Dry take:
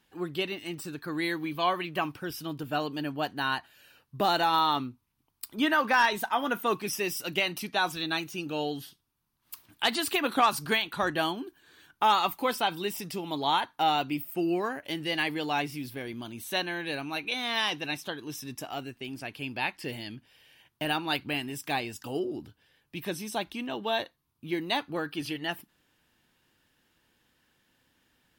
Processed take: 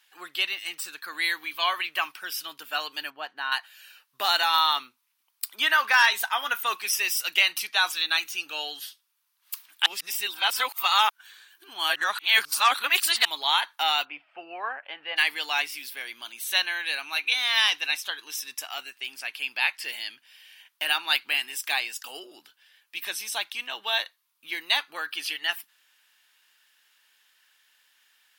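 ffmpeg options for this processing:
ffmpeg -i in.wav -filter_complex "[0:a]asettb=1/sr,asplit=3[link_01][link_02][link_03];[link_01]atrim=end=3.104[link_04];[link_02]atrim=start=3.1:end=3.52,asetpts=PTS-STARTPTS,afade=type=in:duration=0.004:curve=qsin,afade=type=out:start_time=0.416:duration=0.004:curve=qsin,lowpass=frequency=1000:poles=1[link_05];[link_03]atrim=start=3.516[link_06];[link_04][link_05]acrossfade=duration=0.004:curve1=hsin:curve2=qsin[link_07];[link_07][link_06]acrossfade=duration=0.004:curve1=qsin:curve2=hsin,asplit=3[link_08][link_09][link_10];[link_08]afade=type=out:start_time=14.04:duration=0.02[link_11];[link_09]highpass=140,equalizer=frequency=180:width_type=q:width=4:gain=-4,equalizer=frequency=340:width_type=q:width=4:gain=-6,equalizer=frequency=500:width_type=q:width=4:gain=4,equalizer=frequency=770:width_type=q:width=4:gain=6,equalizer=frequency=2000:width_type=q:width=4:gain=-7,lowpass=frequency=2300:width=0.5412,lowpass=frequency=2300:width=1.3066,afade=type=in:start_time=14.04:duration=0.02,afade=type=out:start_time=15.16:duration=0.02[link_12];[link_10]afade=type=in:start_time=15.16:duration=0.02[link_13];[link_11][link_12][link_13]amix=inputs=3:normalize=0,asplit=3[link_14][link_15][link_16];[link_14]atrim=end=9.862[link_17];[link_15]atrim=start=9.858:end=13.252,asetpts=PTS-STARTPTS,areverse[link_18];[link_16]atrim=start=13.248[link_19];[link_17][link_18]acrossfade=duration=0.004:curve1=hsin:curve2=hsin[link_20];[link_20][link_19]acrossfade=duration=0.004:curve1=hsin:curve2=hsin,highpass=1500,volume=8.5dB" out.wav

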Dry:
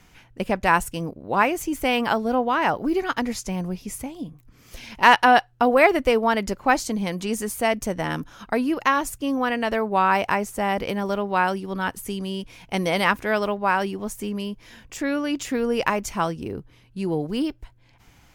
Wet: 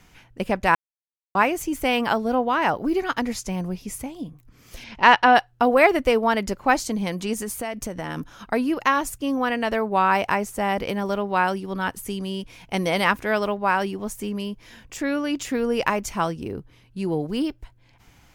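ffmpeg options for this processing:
ffmpeg -i in.wav -filter_complex "[0:a]asplit=3[link_01][link_02][link_03];[link_01]afade=type=out:start_time=4.83:duration=0.02[link_04];[link_02]lowpass=4900,afade=type=in:start_time=4.83:duration=0.02,afade=type=out:start_time=5.34:duration=0.02[link_05];[link_03]afade=type=in:start_time=5.34:duration=0.02[link_06];[link_04][link_05][link_06]amix=inputs=3:normalize=0,asettb=1/sr,asplit=3[link_07][link_08][link_09];[link_07]atrim=end=7.334[link_10];[link_08]atrim=start=7.33:end=8.17,asetpts=PTS-STARTPTS,afade=type=in:duration=0.004:curve=qsin,afade=type=out:start_time=0.836:duration=0.004:curve=qsin,acompressor=threshold=-25dB:ratio=6:attack=3.2:release=140:knee=1:detection=peak[link_11];[link_09]atrim=start=8.166[link_12];[link_10][link_11]acrossfade=duration=0.004:curve1=hsin:curve2=qsin[link_13];[link_13][link_12]acrossfade=duration=0.004:curve1=qsin:curve2=hsin,asplit=3[link_14][link_15][link_16];[link_14]atrim=end=0.75,asetpts=PTS-STARTPTS,afade=type=out:start_time=0.746:duration=0.004:curve=hsin[link_17];[link_15]atrim=start=0.75:end=1.35,asetpts=PTS-STARTPTS,volume=0[link_18];[link_16]atrim=start=1.35,asetpts=PTS-STARTPTS,afade=type=in:duration=0.004:curve=hsin[link_19];[link_17][link_18][link_19]concat=n=3:v=0:a=1" out.wav

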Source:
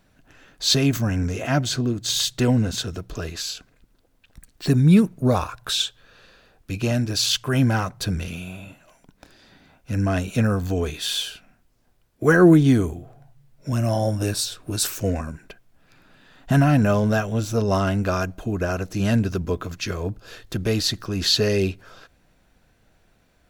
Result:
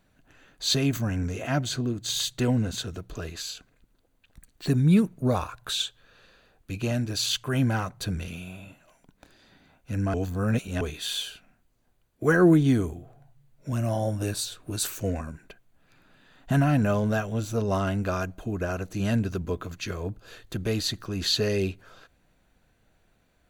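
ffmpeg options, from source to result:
ffmpeg -i in.wav -filter_complex "[0:a]asplit=3[link_01][link_02][link_03];[link_01]atrim=end=10.142[link_04];[link_02]atrim=start=10.138:end=10.812,asetpts=PTS-STARTPTS,areverse[link_05];[link_03]atrim=start=10.808[link_06];[link_04][link_05]acrossfade=duration=0.004:curve1=hsin:curve2=hsin[link_07];[link_07][link_06]acrossfade=duration=0.004:curve1=hsin:curve2=hsin,bandreject=frequency=5300:width=7.6,volume=-5dB" out.wav

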